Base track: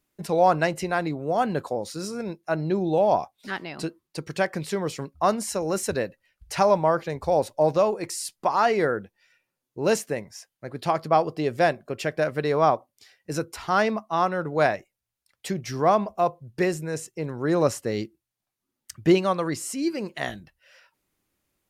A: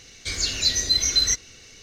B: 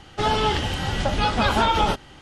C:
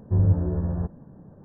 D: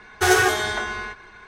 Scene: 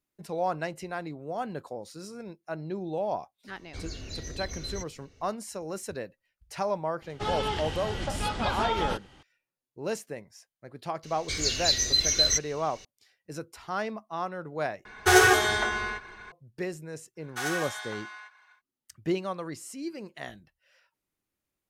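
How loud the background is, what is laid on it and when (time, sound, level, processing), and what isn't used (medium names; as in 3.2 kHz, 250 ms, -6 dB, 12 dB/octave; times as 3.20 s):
base track -10 dB
3.48 s: add A -13 dB + tilt shelf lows +9 dB, about 1.3 kHz
7.02 s: add B -9 dB
11.03 s: add A -3 dB
14.85 s: replace with D -1 dB
17.15 s: add D -13 dB, fades 0.10 s + high-pass 750 Hz 24 dB/octave
not used: C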